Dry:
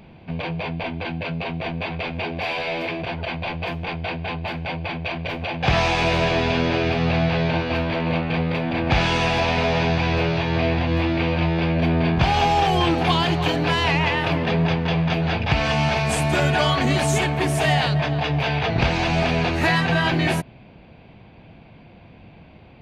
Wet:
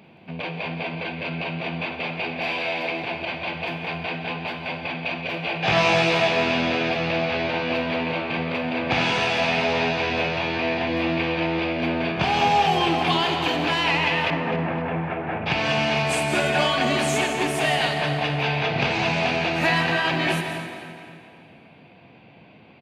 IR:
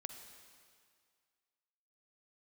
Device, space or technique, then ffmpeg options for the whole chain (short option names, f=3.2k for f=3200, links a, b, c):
PA in a hall: -filter_complex "[0:a]asettb=1/sr,asplit=3[a][b][c];[a]atrim=end=5.324[d];[b]atrim=start=5.32:end=6.28,asetpts=PTS-STARTPTS,afade=t=in:d=0.004:c=qsin,afade=t=out:st=0.956:d=0.004:c=qsin,asplit=2[e][f];[f]adelay=18,volume=-3dB[g];[e][g]amix=inputs=2:normalize=0,atrim=end_sample=42336[h];[c]atrim=start=6.276[i];[d][h]acrossfade=d=0.004:c1=hsin:c2=qsin[j];[j][i]acrossfade=d=0.004:c1=qsin:c2=hsin,highpass=170,equalizer=f=2.6k:t=o:w=0.53:g=3.5,aecho=1:1:173:0.282[k];[1:a]atrim=start_sample=2205[l];[k][l]afir=irnorm=-1:irlink=0,asettb=1/sr,asplit=3[m][n][o];[m]atrim=end=14.304[p];[n]atrim=start=14.3:end=15.46,asetpts=PTS-STARTPTS,afade=t=in:d=0.004:c=qsin,afade=t=out:st=1.156:d=0.004:c=qsin,lowpass=f=1.9k:w=0.5412,lowpass=f=1.9k:w=1.3066[q];[o]atrim=start=15.456[r];[p][q]acrossfade=d=0.004:c1=hsin:c2=qsin[s];[s][r]acrossfade=d=0.004:c1=qsin:c2=hsin,asplit=2[t][u];[u]adelay=257,lowpass=f=4.2k:p=1,volume=-11dB,asplit=2[v][w];[w]adelay=257,lowpass=f=4.2k:p=1,volume=0.48,asplit=2[x][y];[y]adelay=257,lowpass=f=4.2k:p=1,volume=0.48,asplit=2[z][aa];[aa]adelay=257,lowpass=f=4.2k:p=1,volume=0.48,asplit=2[ab][ac];[ac]adelay=257,lowpass=f=4.2k:p=1,volume=0.48[ad];[t][v][x][z][ab][ad]amix=inputs=6:normalize=0,volume=1.5dB"